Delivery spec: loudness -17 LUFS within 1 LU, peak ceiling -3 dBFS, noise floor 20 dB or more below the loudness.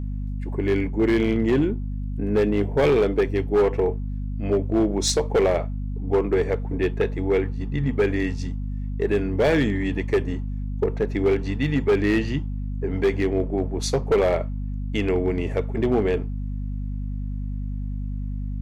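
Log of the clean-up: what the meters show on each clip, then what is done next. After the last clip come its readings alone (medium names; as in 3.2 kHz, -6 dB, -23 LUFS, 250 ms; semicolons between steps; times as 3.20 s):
clipped samples 2.0%; clipping level -14.0 dBFS; hum 50 Hz; highest harmonic 250 Hz; hum level -26 dBFS; loudness -24.0 LUFS; peak level -14.0 dBFS; loudness target -17.0 LUFS
-> clip repair -14 dBFS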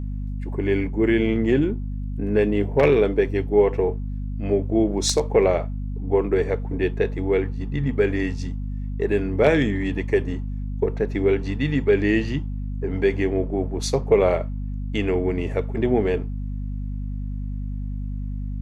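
clipped samples 0.0%; hum 50 Hz; highest harmonic 250 Hz; hum level -26 dBFS
-> hum notches 50/100/150/200/250 Hz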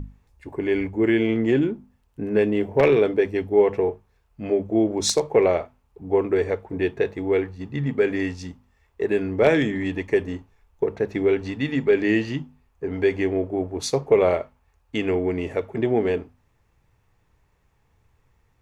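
hum not found; loudness -23.0 LUFS; peak level -4.5 dBFS; loudness target -17.0 LUFS
-> trim +6 dB; peak limiter -3 dBFS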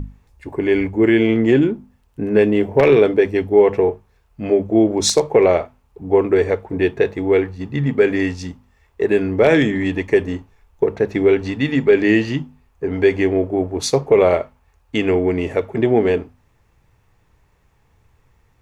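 loudness -17.0 LUFS; peak level -3.0 dBFS; noise floor -59 dBFS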